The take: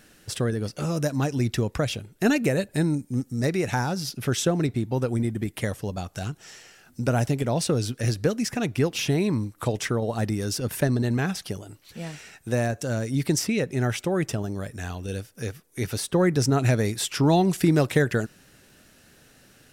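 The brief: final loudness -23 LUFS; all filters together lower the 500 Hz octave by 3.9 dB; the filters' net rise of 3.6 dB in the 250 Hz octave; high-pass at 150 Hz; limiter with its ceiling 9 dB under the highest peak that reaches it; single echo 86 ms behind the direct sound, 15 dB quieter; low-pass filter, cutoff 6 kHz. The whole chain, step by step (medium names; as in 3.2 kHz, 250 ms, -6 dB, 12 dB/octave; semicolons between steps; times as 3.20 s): high-pass 150 Hz; low-pass 6 kHz; peaking EQ 250 Hz +8 dB; peaking EQ 500 Hz -8.5 dB; peak limiter -15 dBFS; delay 86 ms -15 dB; trim +3.5 dB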